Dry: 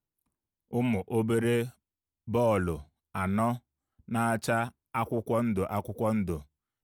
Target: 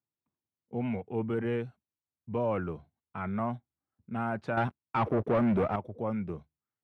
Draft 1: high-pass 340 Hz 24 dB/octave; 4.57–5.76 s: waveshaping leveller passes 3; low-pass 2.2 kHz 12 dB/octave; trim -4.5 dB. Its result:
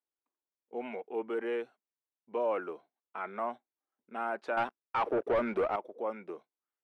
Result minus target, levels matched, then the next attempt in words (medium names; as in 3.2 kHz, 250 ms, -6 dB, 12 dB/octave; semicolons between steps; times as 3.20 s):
125 Hz band -19.0 dB
high-pass 90 Hz 24 dB/octave; 4.57–5.76 s: waveshaping leveller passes 3; low-pass 2.2 kHz 12 dB/octave; trim -4.5 dB